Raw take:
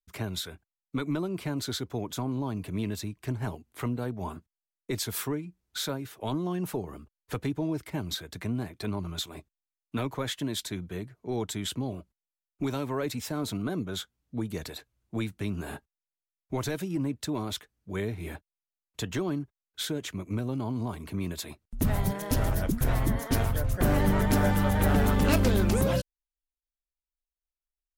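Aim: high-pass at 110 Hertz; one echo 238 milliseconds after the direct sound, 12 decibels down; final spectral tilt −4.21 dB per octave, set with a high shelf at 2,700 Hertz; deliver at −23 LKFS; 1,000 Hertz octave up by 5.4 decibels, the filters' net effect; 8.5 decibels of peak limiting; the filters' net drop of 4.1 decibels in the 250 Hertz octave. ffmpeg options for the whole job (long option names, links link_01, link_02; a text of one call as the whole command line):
ffmpeg -i in.wav -af "highpass=110,equalizer=frequency=250:width_type=o:gain=-5.5,equalizer=frequency=1000:width_type=o:gain=6.5,highshelf=frequency=2700:gain=4,alimiter=limit=-19dB:level=0:latency=1,aecho=1:1:238:0.251,volume=10dB" out.wav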